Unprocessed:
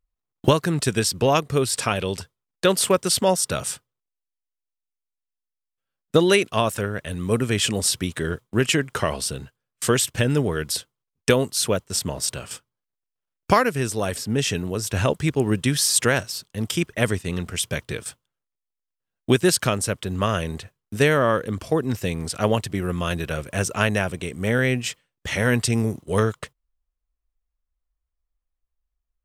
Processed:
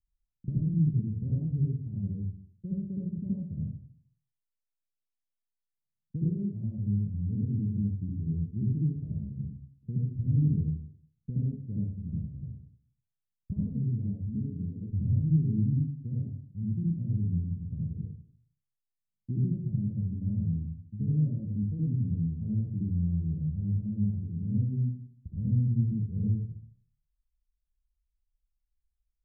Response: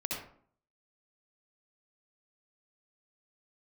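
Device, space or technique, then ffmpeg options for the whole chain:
club heard from the street: -filter_complex "[0:a]asettb=1/sr,asplit=3[link_01][link_02][link_03];[link_01]atrim=end=14.294[link_04];[link_02]atrim=start=14.29:end=14.81,asetpts=PTS-STARTPTS,afade=type=in:duration=0.004:curve=qsin,afade=type=out:start_time=0.516:duration=0.004:curve=qsin,equalizer=frequency=120:width_type=o:width=0.82:gain=-9.5[link_05];[link_03]atrim=start=14.806[link_06];[link_04][link_05]acrossfade=duration=0.004:curve1=hsin:curve2=qsin[link_07];[link_07][link_06]acrossfade=duration=0.004:curve1=qsin:curve2=hsin,alimiter=limit=-10dB:level=0:latency=1:release=91,lowpass=frequency=190:width=0.5412,lowpass=frequency=190:width=1.3066[link_08];[1:a]atrim=start_sample=2205[link_09];[link_08][link_09]afir=irnorm=-1:irlink=0,volume=-4dB"

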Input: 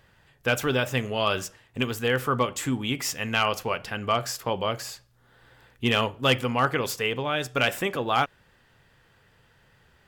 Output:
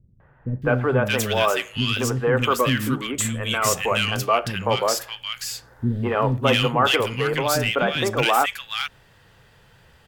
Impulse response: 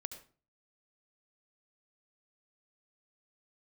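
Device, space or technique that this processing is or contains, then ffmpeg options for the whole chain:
saturation between pre-emphasis and de-emphasis: -filter_complex "[0:a]highshelf=frequency=2500:gain=11.5,asoftclip=type=tanh:threshold=-11.5dB,highshelf=frequency=2500:gain=-11.5,asettb=1/sr,asplit=3[link_01][link_02][link_03];[link_01]atrim=end=2.344[link_04];[link_02]atrim=start=2.34:end=3.55,asetpts=PTS-STARTPTS,afade=type=in:duration=0.004:curve=qsin,afade=type=out:start_time=1.206:duration=0.004:curve=qsin,equalizer=frequency=800:width_type=o:width=0.33:gain=-11,equalizer=frequency=5000:width_type=o:width=0.33:gain=-6,equalizer=frequency=8000:width_type=o:width=0.33:gain=4[link_05];[link_03]atrim=start=3.546[link_06];[link_04][link_05]acrossfade=duration=0.004:curve1=hsin:curve2=qsin[link_07];[link_07][link_06]acrossfade=duration=0.004:curve1=qsin:curve2=hsin,acrossover=split=280|1700[link_08][link_09][link_10];[link_09]adelay=200[link_11];[link_10]adelay=620[link_12];[link_08][link_11][link_12]amix=inputs=3:normalize=0,volume=7.5dB"

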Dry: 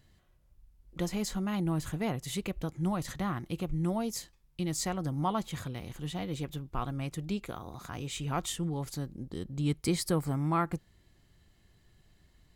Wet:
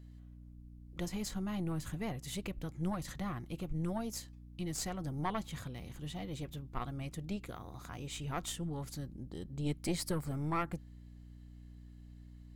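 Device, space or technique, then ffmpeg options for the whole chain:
valve amplifier with mains hum: -af "aeval=exprs='(tanh(12.6*val(0)+0.7)-tanh(0.7))/12.6':channel_layout=same,aeval=exprs='val(0)+0.00316*(sin(2*PI*60*n/s)+sin(2*PI*2*60*n/s)/2+sin(2*PI*3*60*n/s)/3+sin(2*PI*4*60*n/s)/4+sin(2*PI*5*60*n/s)/5)':channel_layout=same,volume=-1dB"

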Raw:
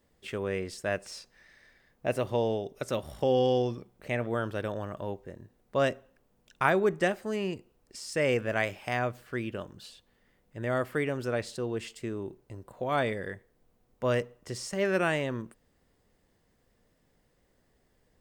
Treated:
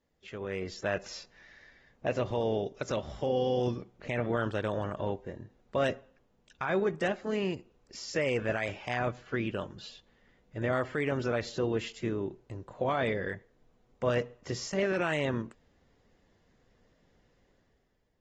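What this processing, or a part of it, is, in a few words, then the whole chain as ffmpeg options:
low-bitrate web radio: -filter_complex "[0:a]asettb=1/sr,asplit=3[link_01][link_02][link_03];[link_01]atrim=end=5.304[link_04];[link_02]atrim=start=5.3:end=5.78,asetpts=PTS-STARTPTS,afade=type=in:duration=0.004:curve=qsin,afade=type=out:start_time=0.476:duration=0.004:curve=qsin,lowpass=9100[link_05];[link_03]atrim=start=5.776[link_06];[link_04][link_05]acrossfade=duration=0.004:curve1=hsin:curve2=qsin[link_07];[link_07][link_06]acrossfade=duration=0.004:curve1=qsin:curve2=hsin,dynaudnorm=framelen=120:gausssize=11:maxgain=10.5dB,alimiter=limit=-12.5dB:level=0:latency=1:release=58,volume=-8.5dB" -ar 48000 -c:a aac -b:a 24k

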